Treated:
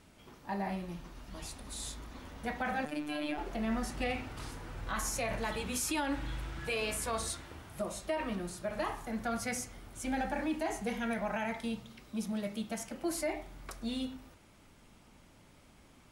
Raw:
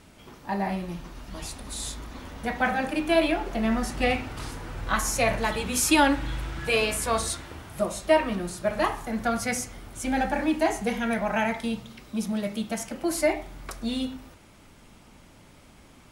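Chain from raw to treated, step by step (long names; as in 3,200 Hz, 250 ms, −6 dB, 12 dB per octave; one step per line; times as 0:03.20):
brickwall limiter −17.5 dBFS, peak gain reduction 9 dB
0:02.85–0:03.38: phases set to zero 149 Hz
level −7.5 dB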